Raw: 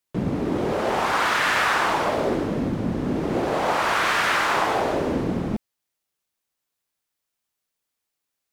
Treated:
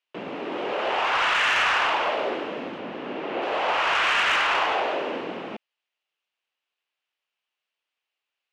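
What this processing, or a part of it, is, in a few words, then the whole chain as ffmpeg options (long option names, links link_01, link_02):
intercom: -filter_complex "[0:a]asettb=1/sr,asplit=3[link_01][link_02][link_03];[link_01]atrim=end=2.784[link_04];[link_02]atrim=start=2.78:end=3.42,asetpts=PTS-STARTPTS,afade=type=in:duration=0.004:curve=qsin,afade=type=out:start_time=0.636:duration=0.004:curve=qsin,acrossover=split=4400[link_05][link_06];[link_06]acompressor=threshold=-59dB:ratio=4:attack=1:release=60[link_07];[link_05][link_07]amix=inputs=2:normalize=0[link_08];[link_03]atrim=start=3.416[link_09];[link_04][link_08]acrossfade=duration=0.004:curve1=hsin:curve2=qsin[link_10];[link_10][link_09]acrossfade=duration=0.004:curve1=qsin:curve2=hsin,highpass=500,lowpass=3500,equalizer=frequency=2800:width_type=o:width=0.53:gain=10,asoftclip=type=tanh:threshold=-15dB"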